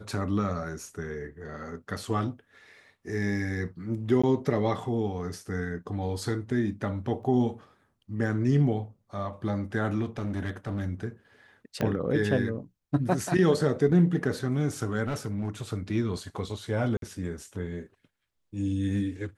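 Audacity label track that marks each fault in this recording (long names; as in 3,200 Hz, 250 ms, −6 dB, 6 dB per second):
4.220000	4.240000	drop-out 15 ms
7.230000	7.230000	drop-out 2.7 ms
10.030000	10.870000	clipping −27 dBFS
11.810000	11.810000	click −16 dBFS
15.060000	15.620000	clipping −26.5 dBFS
16.970000	17.020000	drop-out 52 ms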